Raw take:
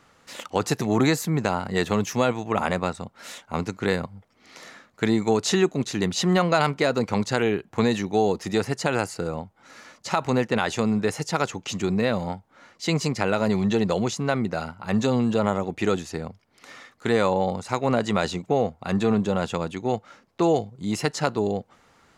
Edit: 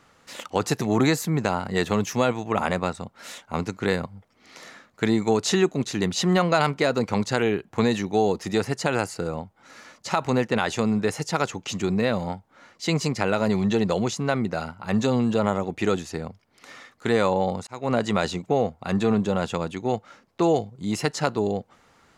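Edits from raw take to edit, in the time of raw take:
17.67–17.96 fade in

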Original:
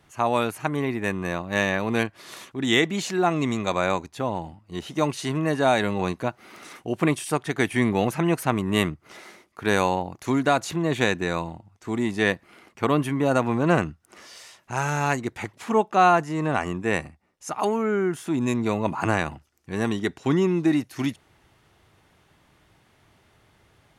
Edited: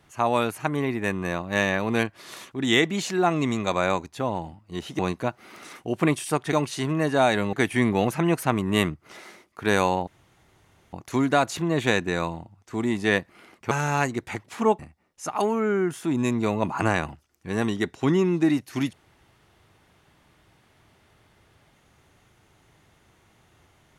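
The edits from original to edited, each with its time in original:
4.99–5.99 move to 7.53
10.07 insert room tone 0.86 s
12.85–14.8 cut
15.88–17.02 cut

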